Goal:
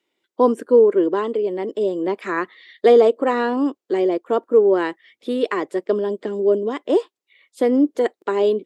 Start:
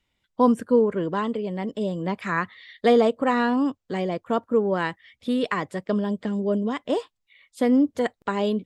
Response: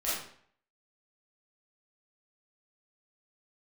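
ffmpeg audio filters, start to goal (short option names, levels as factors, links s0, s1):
-af "highpass=f=360:t=q:w=4.2"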